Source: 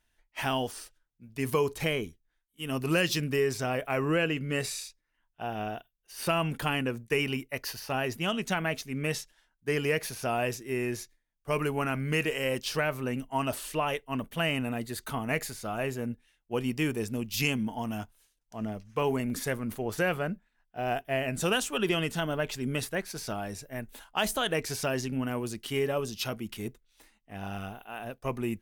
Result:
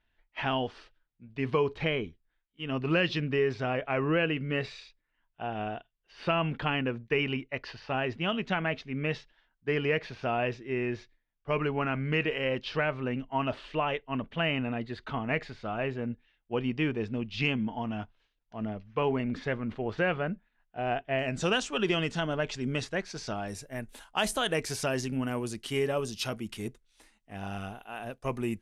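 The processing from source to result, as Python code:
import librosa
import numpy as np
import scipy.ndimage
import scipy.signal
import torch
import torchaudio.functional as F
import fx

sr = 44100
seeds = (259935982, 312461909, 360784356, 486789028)

y = fx.lowpass(x, sr, hz=fx.steps((0.0, 3700.0), (21.19, 6500.0), (23.48, 11000.0)), slope=24)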